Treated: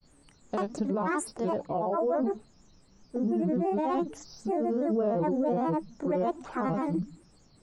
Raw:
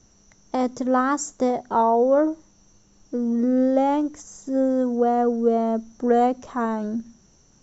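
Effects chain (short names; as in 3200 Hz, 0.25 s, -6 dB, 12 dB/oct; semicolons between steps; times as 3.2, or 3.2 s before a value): high shelf 5200 Hz -7 dB; limiter -20 dBFS, peak gain reduction 11 dB; grains 0.1 s, grains 24/s, spray 39 ms, pitch spread up and down by 7 st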